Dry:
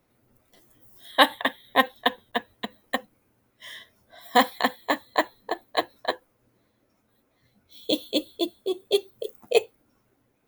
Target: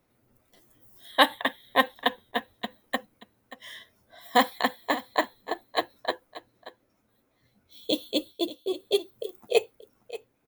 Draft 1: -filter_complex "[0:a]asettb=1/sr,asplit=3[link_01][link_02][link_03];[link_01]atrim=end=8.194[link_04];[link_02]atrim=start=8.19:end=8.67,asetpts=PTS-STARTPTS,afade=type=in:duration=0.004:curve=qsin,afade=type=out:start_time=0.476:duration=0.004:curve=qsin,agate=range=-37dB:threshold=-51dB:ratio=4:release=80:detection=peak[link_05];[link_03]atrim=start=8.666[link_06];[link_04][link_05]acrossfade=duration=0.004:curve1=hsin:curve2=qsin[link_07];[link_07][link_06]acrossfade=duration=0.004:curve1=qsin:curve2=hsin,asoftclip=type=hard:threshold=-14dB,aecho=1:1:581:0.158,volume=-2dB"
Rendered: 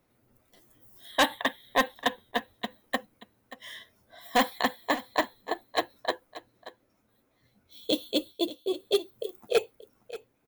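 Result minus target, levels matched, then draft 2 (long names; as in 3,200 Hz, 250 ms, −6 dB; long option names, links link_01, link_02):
hard clipping: distortion +39 dB
-filter_complex "[0:a]asettb=1/sr,asplit=3[link_01][link_02][link_03];[link_01]atrim=end=8.194[link_04];[link_02]atrim=start=8.19:end=8.67,asetpts=PTS-STARTPTS,afade=type=in:duration=0.004:curve=qsin,afade=type=out:start_time=0.476:duration=0.004:curve=qsin,agate=range=-37dB:threshold=-51dB:ratio=4:release=80:detection=peak[link_05];[link_03]atrim=start=8.666[link_06];[link_04][link_05]acrossfade=duration=0.004:curve1=hsin:curve2=qsin[link_07];[link_07][link_06]acrossfade=duration=0.004:curve1=qsin:curve2=hsin,asoftclip=type=hard:threshold=-3dB,aecho=1:1:581:0.158,volume=-2dB"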